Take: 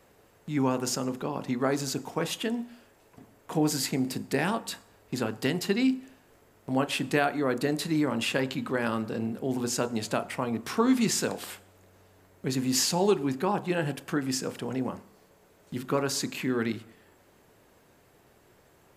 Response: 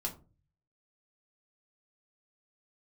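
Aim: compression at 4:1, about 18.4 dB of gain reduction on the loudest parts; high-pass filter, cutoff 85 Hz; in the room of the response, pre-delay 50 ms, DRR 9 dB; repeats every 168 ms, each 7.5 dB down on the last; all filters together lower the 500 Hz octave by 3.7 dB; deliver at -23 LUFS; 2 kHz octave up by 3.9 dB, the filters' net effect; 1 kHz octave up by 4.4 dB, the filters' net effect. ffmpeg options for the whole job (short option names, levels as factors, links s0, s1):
-filter_complex "[0:a]highpass=85,equalizer=f=500:t=o:g=-6.5,equalizer=f=1000:t=o:g=7,equalizer=f=2000:t=o:g=3,acompressor=threshold=0.00794:ratio=4,aecho=1:1:168|336|504|672|840:0.422|0.177|0.0744|0.0312|0.0131,asplit=2[s0][s1];[1:a]atrim=start_sample=2205,adelay=50[s2];[s1][s2]afir=irnorm=-1:irlink=0,volume=0.299[s3];[s0][s3]amix=inputs=2:normalize=0,volume=8.91"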